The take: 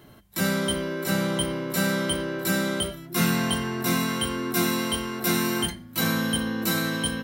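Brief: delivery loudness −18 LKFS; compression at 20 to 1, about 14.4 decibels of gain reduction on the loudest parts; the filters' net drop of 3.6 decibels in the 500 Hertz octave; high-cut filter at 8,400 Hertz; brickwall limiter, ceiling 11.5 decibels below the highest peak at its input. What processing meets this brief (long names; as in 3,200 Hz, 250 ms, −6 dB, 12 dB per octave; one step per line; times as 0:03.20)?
low-pass filter 8,400 Hz
parametric band 500 Hz −5 dB
downward compressor 20 to 1, threshold −34 dBFS
level +25 dB
brickwall limiter −9.5 dBFS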